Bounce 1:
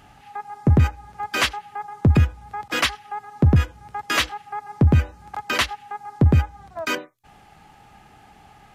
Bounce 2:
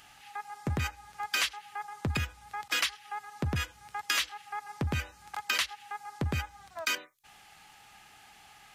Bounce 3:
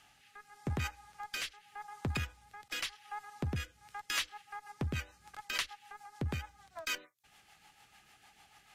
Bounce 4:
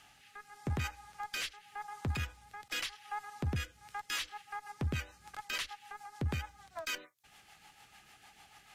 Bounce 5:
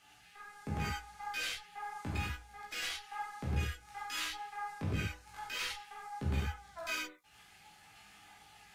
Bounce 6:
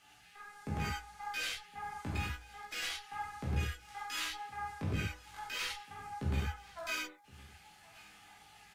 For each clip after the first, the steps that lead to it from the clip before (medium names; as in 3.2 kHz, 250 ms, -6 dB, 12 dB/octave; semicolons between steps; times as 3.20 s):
tilt shelf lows -10 dB, about 1.1 kHz; compression 6:1, threshold -21 dBFS, peak gain reduction 11.5 dB; trim -5.5 dB
Chebyshev shaper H 8 -30 dB, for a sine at -12.5 dBFS; rotary cabinet horn 0.85 Hz, later 6.7 Hz, at 3.54 s; trim -4 dB
peak limiter -29.5 dBFS, peak gain reduction 10.5 dB; trim +3 dB
chorus voices 2, 0.31 Hz, delay 17 ms, depth 2.4 ms; gated-style reverb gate 130 ms flat, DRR -4.5 dB; trim -2.5 dB
delay 1066 ms -23 dB